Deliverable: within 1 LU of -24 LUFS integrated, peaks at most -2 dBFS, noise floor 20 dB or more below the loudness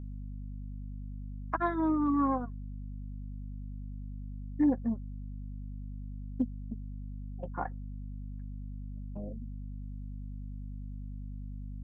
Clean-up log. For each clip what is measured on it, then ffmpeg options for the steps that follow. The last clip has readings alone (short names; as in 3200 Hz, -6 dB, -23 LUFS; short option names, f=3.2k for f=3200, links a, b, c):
hum 50 Hz; harmonics up to 250 Hz; hum level -38 dBFS; loudness -37.0 LUFS; peak -17.0 dBFS; loudness target -24.0 LUFS
-> -af "bandreject=f=50:t=h:w=4,bandreject=f=100:t=h:w=4,bandreject=f=150:t=h:w=4,bandreject=f=200:t=h:w=4,bandreject=f=250:t=h:w=4"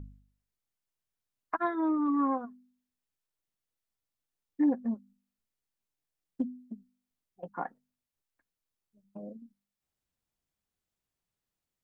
hum none; loudness -32.0 LUFS; peak -17.0 dBFS; loudness target -24.0 LUFS
-> -af "volume=8dB"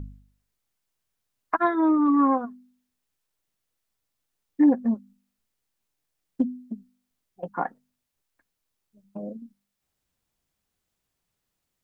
loudness -24.0 LUFS; peak -9.0 dBFS; noise floor -81 dBFS